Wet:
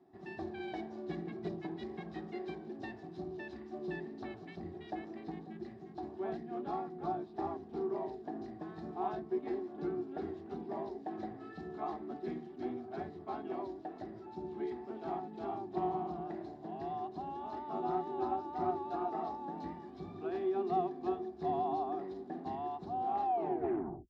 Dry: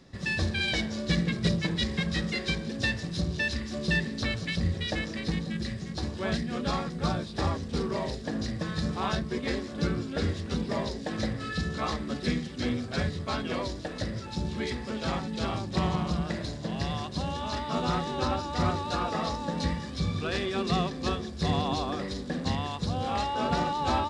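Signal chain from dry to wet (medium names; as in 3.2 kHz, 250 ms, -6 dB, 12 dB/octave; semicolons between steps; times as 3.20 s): tape stop on the ending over 0.90 s; wow and flutter 25 cents; two resonant band-passes 520 Hz, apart 1 oct; trim +1.5 dB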